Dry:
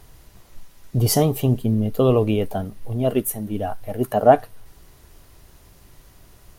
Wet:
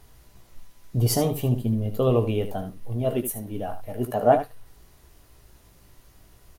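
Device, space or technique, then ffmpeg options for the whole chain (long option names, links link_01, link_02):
slapback doubling: -filter_complex "[0:a]asplit=3[link_01][link_02][link_03];[link_02]adelay=17,volume=-7.5dB[link_04];[link_03]adelay=76,volume=-10dB[link_05];[link_01][link_04][link_05]amix=inputs=3:normalize=0,volume=-5.5dB"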